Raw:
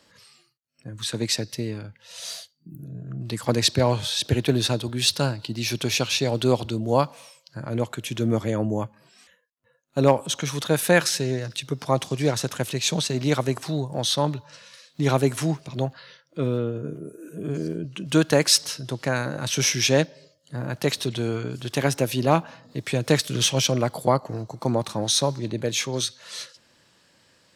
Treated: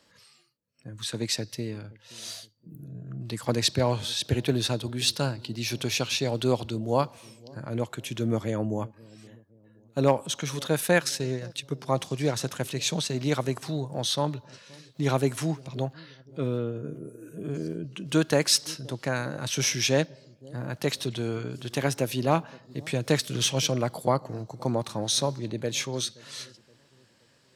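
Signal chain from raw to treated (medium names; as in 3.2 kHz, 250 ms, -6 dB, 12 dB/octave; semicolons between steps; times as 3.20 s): 10.78–11.88 s: transient shaper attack 0 dB, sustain -6 dB; feedback echo behind a low-pass 523 ms, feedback 43%, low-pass 480 Hz, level -21 dB; trim -4 dB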